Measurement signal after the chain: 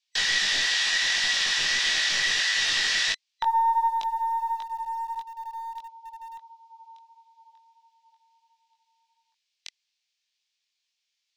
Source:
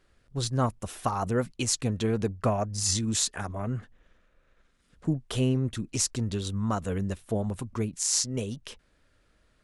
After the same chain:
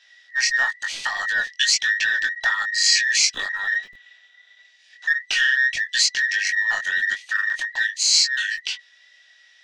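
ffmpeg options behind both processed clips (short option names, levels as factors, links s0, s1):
-filter_complex "[0:a]afftfilt=real='real(if(between(b,1,1012),(2*floor((b-1)/92)+1)*92-b,b),0)':imag='imag(if(between(b,1,1012),(2*floor((b-1)/92)+1)*92-b,b),0)*if(between(b,1,1012),-1,1)':win_size=2048:overlap=0.75,bandreject=f=2000:w=22,flanger=delay=19:depth=3.2:speed=1.5,highshelf=f=3200:g=-4.5,asplit=2[s0][s1];[s1]acompressor=threshold=0.0126:ratio=6,volume=1[s2];[s0][s2]amix=inputs=2:normalize=0,aexciter=amount=3.7:drive=9.7:freq=2000,lowpass=f=5500:w=0.5412,lowpass=f=5500:w=1.3066,acrossover=split=590|830[s3][s4][s5];[s3]acrusher=bits=6:dc=4:mix=0:aa=0.000001[s6];[s6][s4][s5]amix=inputs=3:normalize=0"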